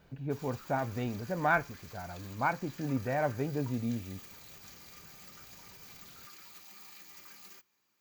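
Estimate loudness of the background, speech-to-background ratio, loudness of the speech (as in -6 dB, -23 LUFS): -49.5 LUFS, 15.5 dB, -34.0 LUFS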